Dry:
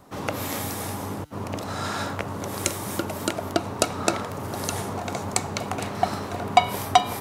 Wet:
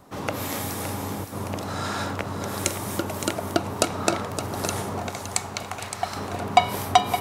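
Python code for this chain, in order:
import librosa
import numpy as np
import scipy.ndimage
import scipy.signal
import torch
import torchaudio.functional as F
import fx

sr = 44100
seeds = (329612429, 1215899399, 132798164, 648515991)

y = fx.peak_eq(x, sr, hz=240.0, db=-12.0, octaves=2.8, at=(5.09, 6.16))
y = y + 10.0 ** (-9.5 / 20.0) * np.pad(y, (int(566 * sr / 1000.0), 0))[:len(y)]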